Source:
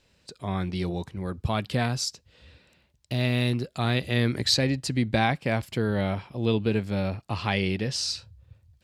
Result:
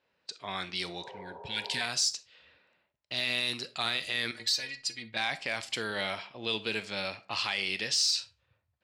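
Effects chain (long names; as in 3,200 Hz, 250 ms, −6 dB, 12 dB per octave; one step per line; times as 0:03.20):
meter weighting curve ITU-R 468
in parallel at −3.5 dB: soft clipping −14.5 dBFS, distortion −9 dB
0:04.31–0:05.17: on the sum: stiff-string resonator 110 Hz, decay 0.21 s, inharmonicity 0.008
brickwall limiter −12.5 dBFS, peak gain reduction 8.5 dB
0:01.06–0:01.78: healed spectral selection 370–1,400 Hz before
low-pass that shuts in the quiet parts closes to 1,000 Hz, open at −22.5 dBFS
on a send at −13 dB: convolution reverb RT60 0.35 s, pre-delay 4 ms
on the sum: level −6.5 dB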